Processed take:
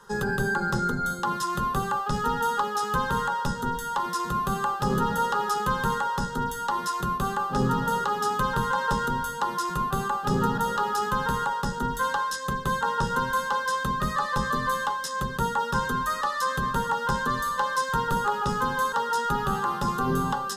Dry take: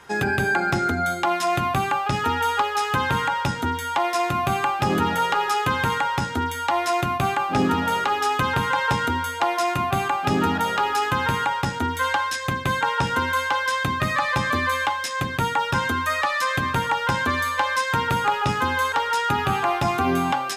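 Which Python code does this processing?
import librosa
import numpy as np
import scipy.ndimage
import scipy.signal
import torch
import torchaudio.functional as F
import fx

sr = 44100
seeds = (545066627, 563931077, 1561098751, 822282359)

y = fx.octave_divider(x, sr, octaves=1, level_db=0.0)
y = fx.fixed_phaser(y, sr, hz=460.0, stages=8)
y = y * 10.0 ** (-1.5 / 20.0)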